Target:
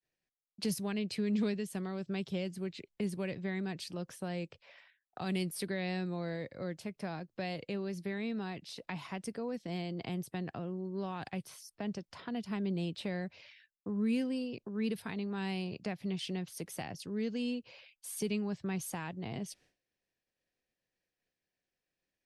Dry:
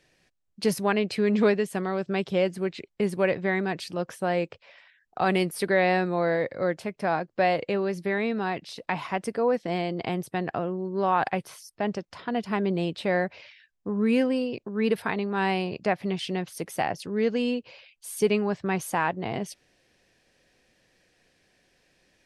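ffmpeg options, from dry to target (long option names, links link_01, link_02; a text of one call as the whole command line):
ffmpeg -i in.wav -filter_complex "[0:a]agate=range=-33dB:threshold=-53dB:ratio=3:detection=peak,acrossover=split=270|3000[link_01][link_02][link_03];[link_02]acompressor=threshold=-41dB:ratio=3[link_04];[link_01][link_04][link_03]amix=inputs=3:normalize=0,volume=-5dB" out.wav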